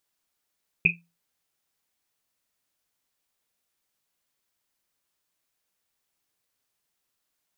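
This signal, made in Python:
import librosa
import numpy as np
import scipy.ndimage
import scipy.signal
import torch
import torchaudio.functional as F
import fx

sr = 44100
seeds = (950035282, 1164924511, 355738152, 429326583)

y = fx.risset_drum(sr, seeds[0], length_s=1.1, hz=170.0, decay_s=0.3, noise_hz=2500.0, noise_width_hz=250.0, noise_pct=80)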